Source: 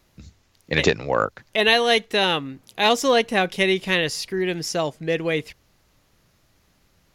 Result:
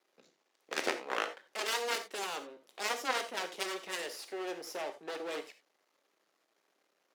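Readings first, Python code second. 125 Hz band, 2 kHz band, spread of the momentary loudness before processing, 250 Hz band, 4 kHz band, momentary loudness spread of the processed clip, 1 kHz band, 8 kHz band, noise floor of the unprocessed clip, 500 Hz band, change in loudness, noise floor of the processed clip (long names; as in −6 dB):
below −35 dB, −15.0 dB, 8 LU, −20.5 dB, −16.0 dB, 7 LU, −13.5 dB, −9.0 dB, −63 dBFS, −17.5 dB, −15.5 dB, −78 dBFS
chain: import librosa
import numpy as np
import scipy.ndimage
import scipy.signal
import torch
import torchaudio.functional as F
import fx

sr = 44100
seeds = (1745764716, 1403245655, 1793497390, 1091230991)

y = fx.cheby_harmonics(x, sr, harmonics=(3, 5, 7), levels_db=(-18, -22, -10), full_scale_db=-3.5)
y = fx.high_shelf(y, sr, hz=4000.0, db=-11.5)
y = np.maximum(y, 0.0)
y = scipy.signal.sosfilt(scipy.signal.butter(4, 330.0, 'highpass', fs=sr, output='sos'), y)
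y = fx.peak_eq(y, sr, hz=9100.0, db=2.5, octaves=1.7)
y = fx.rev_gated(y, sr, seeds[0], gate_ms=110, shape='flat', drr_db=8.0)
y = y * librosa.db_to_amplitude(-7.0)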